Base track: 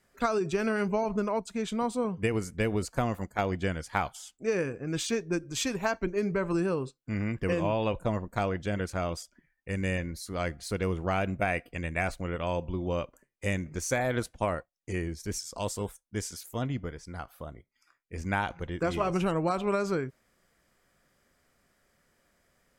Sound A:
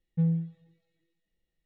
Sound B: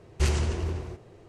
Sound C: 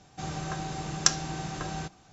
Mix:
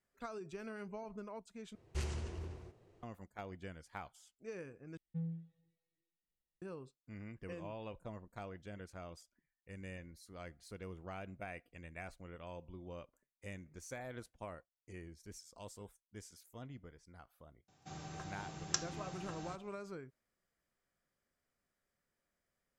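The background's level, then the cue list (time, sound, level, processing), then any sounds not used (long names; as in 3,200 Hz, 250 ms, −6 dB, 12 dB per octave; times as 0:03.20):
base track −18 dB
0:01.75: overwrite with B −14.5 dB
0:04.97: overwrite with A −15 dB
0:17.68: mix in C −13 dB + high-pass filter 57 Hz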